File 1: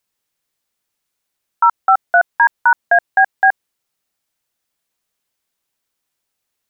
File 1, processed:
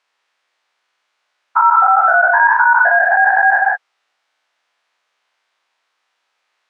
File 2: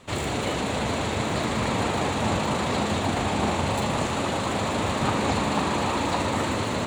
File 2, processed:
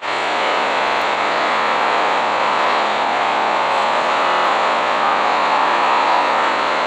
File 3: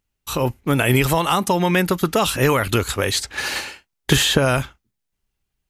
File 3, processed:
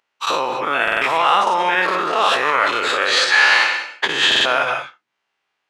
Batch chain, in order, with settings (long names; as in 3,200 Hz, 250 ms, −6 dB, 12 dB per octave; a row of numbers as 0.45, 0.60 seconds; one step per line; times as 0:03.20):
every bin's largest magnitude spread in time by 120 ms
head-to-tape spacing loss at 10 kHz 30 dB
reverb whose tail is shaped and stops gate 210 ms rising, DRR 9.5 dB
in parallel at −0.5 dB: compressor whose output falls as the input rises −23 dBFS, ratio −1
on the sum: brickwall limiter −6 dBFS
high-pass filter 910 Hz 12 dB per octave
buffer that repeats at 0:00.83/0:04.27, samples 2,048, times 3
normalise the peak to −2 dBFS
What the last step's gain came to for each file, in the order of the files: +5.0, +8.0, +5.0 decibels